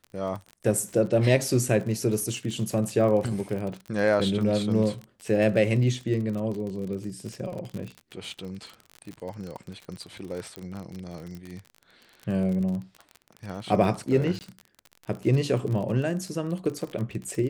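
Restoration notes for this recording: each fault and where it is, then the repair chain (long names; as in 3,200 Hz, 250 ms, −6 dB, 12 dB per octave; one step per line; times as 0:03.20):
surface crackle 37 per second −32 dBFS
0:10.56: click −20 dBFS
0:14.39–0:14.41: drop-out 19 ms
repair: click removal
repair the gap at 0:14.39, 19 ms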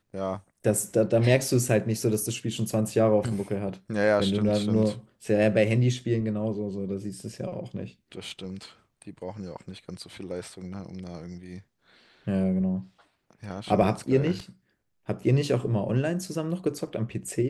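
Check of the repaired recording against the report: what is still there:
none of them is left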